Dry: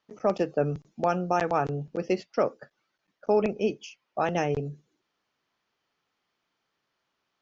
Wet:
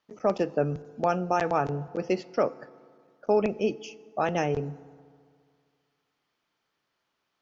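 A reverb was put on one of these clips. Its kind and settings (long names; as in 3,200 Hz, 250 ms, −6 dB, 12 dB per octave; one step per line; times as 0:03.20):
feedback delay network reverb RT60 2.1 s, low-frequency decay 1×, high-frequency decay 0.55×, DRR 18 dB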